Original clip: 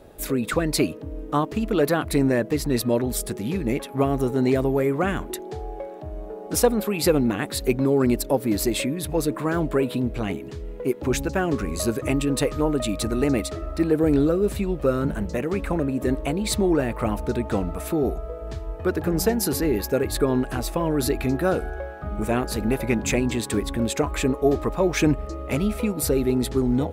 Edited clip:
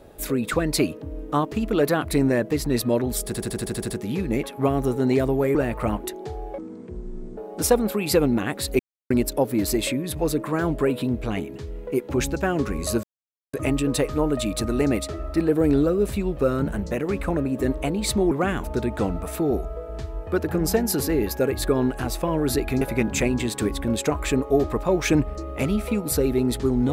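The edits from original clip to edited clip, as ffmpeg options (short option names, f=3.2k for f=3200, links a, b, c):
-filter_complex "[0:a]asplit=19[a][b][c][d][e][f][g][h][i][j][k][l][m][n][o][p][q][r][s];[a]atrim=end=3.342[t];[b]atrim=start=3.258:end=3.342[u];[c]atrim=start=3.258:end=3.342[v];[d]atrim=start=3.258:end=3.342[w];[e]atrim=start=3.258:end=3.342[x];[f]atrim=start=3.258:end=3.342[y];[g]atrim=start=3.258:end=3.342[z];[h]atrim=start=3.258:end=3.342[aa];[i]atrim=start=3.258:end=4.912[ab];[j]atrim=start=16.738:end=17.162[ac];[k]atrim=start=5.228:end=5.844[ad];[l]atrim=start=5.84:end=6.3,asetpts=PTS-STARTPTS,asetrate=25578,aresample=44100[ae];[m]atrim=start=6.296:end=7.72,asetpts=PTS-STARTPTS,afade=t=out:st=1.42:d=0.004:c=hsin[af];[n]atrim=start=7.72:end=8.03,asetpts=PTS-STARTPTS,volume=0[ag];[o]atrim=start=8.03:end=11.96,asetpts=PTS-STARTPTS,afade=t=in:d=0.004:c=hsin,afade=t=out:st=3.926:d=0.004:c=hsin,apad=pad_dur=0.5[ah];[p]atrim=start=11.96:end=16.742,asetpts=PTS-STARTPTS,afade=t=in:d=0.004:c=hsin[ai];[q]atrim=start=4.908:end=5.232[aj];[r]atrim=start=17.158:end=21.342[ak];[s]atrim=start=22.728[al];[t][u]acrossfade=d=0.004:c1=hsin:c2=hsin[am];[am][v]acrossfade=d=0.004:c1=hsin:c2=hsin[an];[an][w]acrossfade=d=0.004:c1=hsin:c2=hsin[ao];[ao][x]acrossfade=d=0.004:c1=hsin:c2=hsin[ap];[ap][y]acrossfade=d=0.004:c1=hsin:c2=hsin[aq];[aq][z]acrossfade=d=0.004:c1=hsin:c2=hsin[ar];[ar][aa]acrossfade=d=0.004:c1=hsin:c2=hsin[as];[as][ab]acrossfade=d=0.004:c1=hsin:c2=hsin[at];[at][ac]acrossfade=d=0.004:c1=hsin:c2=hsin[au];[au][ad]acrossfade=d=0.004:c1=hsin:c2=hsin[av];[av][ae]acrossfade=d=0.004:c1=hsin:c2=hsin[aw];[af][ag][ah][ai]concat=n=4:v=0:a=1[ax];[aw][ax]acrossfade=d=0.004:c1=hsin:c2=hsin[ay];[ay][aj]acrossfade=d=0.004:c1=hsin:c2=hsin[az];[az][ak]acrossfade=d=0.004:c1=hsin:c2=hsin[ba];[ba][al]acrossfade=d=0.004:c1=hsin:c2=hsin"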